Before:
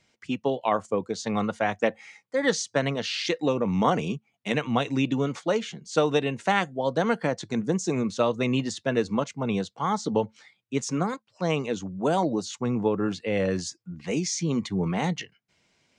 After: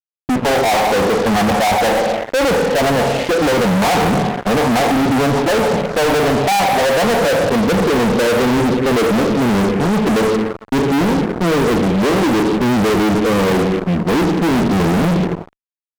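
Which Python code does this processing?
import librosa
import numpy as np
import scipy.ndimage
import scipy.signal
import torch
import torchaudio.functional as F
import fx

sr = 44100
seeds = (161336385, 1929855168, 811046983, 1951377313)

y = fx.filter_sweep_lowpass(x, sr, from_hz=780.0, to_hz=370.0, start_s=6.42, end_s=9.2, q=3.1)
y = fx.rev_double_slope(y, sr, seeds[0], early_s=0.89, late_s=2.7, knee_db=-23, drr_db=7.0)
y = fx.fuzz(y, sr, gain_db=43.0, gate_db=-46.0)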